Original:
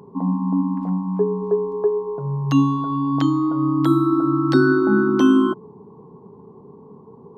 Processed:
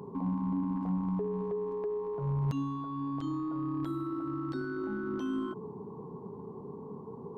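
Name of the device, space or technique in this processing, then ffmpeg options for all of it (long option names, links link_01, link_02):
de-esser from a sidechain: -filter_complex "[0:a]asplit=2[link_01][link_02];[link_02]highpass=frequency=4800:poles=1,apad=whole_len=325089[link_03];[link_01][link_03]sidechaincompress=threshold=-53dB:ratio=6:attack=0.69:release=24"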